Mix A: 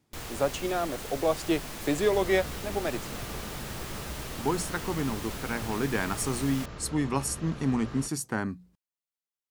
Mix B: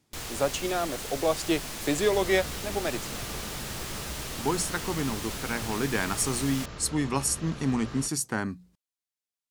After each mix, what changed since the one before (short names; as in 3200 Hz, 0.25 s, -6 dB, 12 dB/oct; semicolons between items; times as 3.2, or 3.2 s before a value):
master: add bell 6600 Hz +5.5 dB 2.7 oct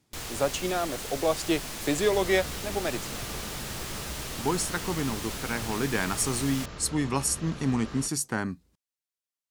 speech: remove notches 60/120/180 Hz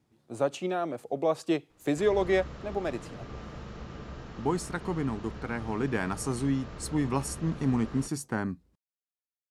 first sound: muted; master: add high shelf 2200 Hz -11 dB